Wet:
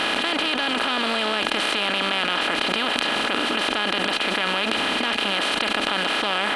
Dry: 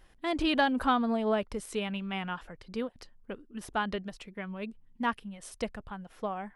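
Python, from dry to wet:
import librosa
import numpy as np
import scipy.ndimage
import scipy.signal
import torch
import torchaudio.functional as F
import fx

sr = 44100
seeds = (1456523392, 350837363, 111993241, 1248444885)

y = fx.bin_compress(x, sr, power=0.2)
y = fx.weighting(y, sr, curve='D')
y = fx.env_flatten(y, sr, amount_pct=100)
y = y * 10.0 ** (-9.0 / 20.0)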